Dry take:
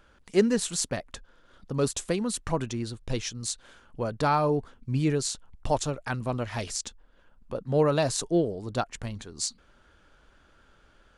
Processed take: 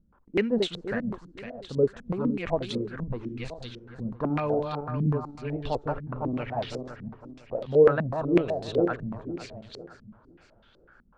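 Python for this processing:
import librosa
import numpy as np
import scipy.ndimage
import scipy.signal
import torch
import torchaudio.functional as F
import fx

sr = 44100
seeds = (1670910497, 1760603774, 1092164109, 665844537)

y = fx.reverse_delay_fb(x, sr, ms=253, feedback_pct=54, wet_db=-4)
y = fx.filter_held_lowpass(y, sr, hz=8.0, low_hz=200.0, high_hz=3600.0)
y = y * 10.0 ** (-5.0 / 20.0)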